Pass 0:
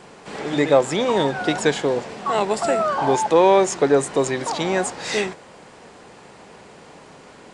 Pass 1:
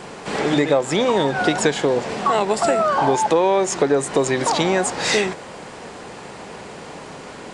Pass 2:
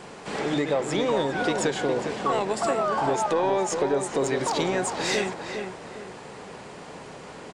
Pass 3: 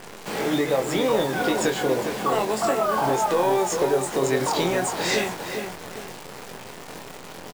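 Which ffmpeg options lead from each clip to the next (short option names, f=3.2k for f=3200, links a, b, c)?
-af "acompressor=threshold=-24dB:ratio=4,volume=8.5dB"
-filter_complex "[0:a]asoftclip=type=tanh:threshold=-8dB,asplit=2[a][b];[b]adelay=408,lowpass=f=2k:p=1,volume=-5.5dB,asplit=2[c][d];[d]adelay=408,lowpass=f=2k:p=1,volume=0.38,asplit=2[e][f];[f]adelay=408,lowpass=f=2k:p=1,volume=0.38,asplit=2[g][h];[h]adelay=408,lowpass=f=2k:p=1,volume=0.38,asplit=2[i][j];[j]adelay=408,lowpass=f=2k:p=1,volume=0.38[k];[c][e][g][i][k]amix=inputs=5:normalize=0[l];[a][l]amix=inputs=2:normalize=0,volume=-6.5dB"
-filter_complex "[0:a]acrusher=bits=7:dc=4:mix=0:aa=0.000001,asplit=2[a][b];[b]adelay=23,volume=-5dB[c];[a][c]amix=inputs=2:normalize=0,volume=1dB"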